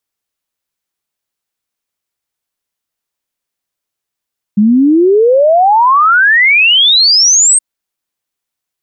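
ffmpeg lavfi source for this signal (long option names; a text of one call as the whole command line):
ffmpeg -f lavfi -i "aevalsrc='0.596*clip(min(t,3.02-t)/0.01,0,1)*sin(2*PI*200*3.02/log(8600/200)*(exp(log(8600/200)*t/3.02)-1))':duration=3.02:sample_rate=44100" out.wav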